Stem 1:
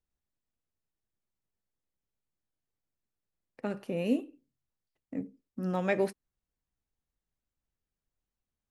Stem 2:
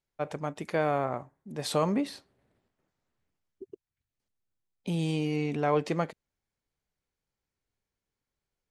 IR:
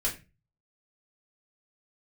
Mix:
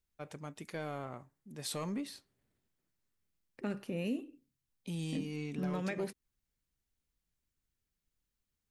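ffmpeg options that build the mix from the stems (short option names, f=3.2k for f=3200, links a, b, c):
-filter_complex "[0:a]volume=2dB[a];[1:a]asoftclip=type=tanh:threshold=-16.5dB,crystalizer=i=1:c=0,volume=-7.5dB[b];[a][b]amix=inputs=2:normalize=0,equalizer=f=680:w=0.87:g=-7,alimiter=level_in=3dB:limit=-24dB:level=0:latency=1:release=214,volume=-3dB"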